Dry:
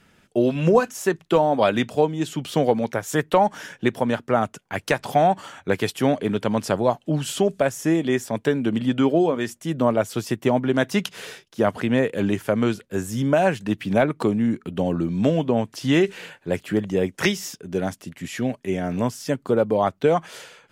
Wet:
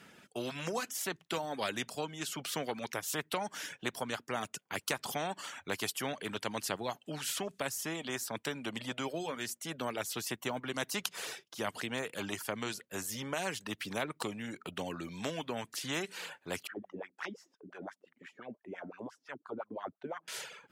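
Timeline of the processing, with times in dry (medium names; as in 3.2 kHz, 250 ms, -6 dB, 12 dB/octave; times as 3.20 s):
16.67–20.28 s: wah-wah 5.8 Hz 220–1700 Hz, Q 4.6
whole clip: Bessel high-pass 190 Hz, order 2; reverb removal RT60 0.64 s; spectrum-flattening compressor 2:1; trim -6 dB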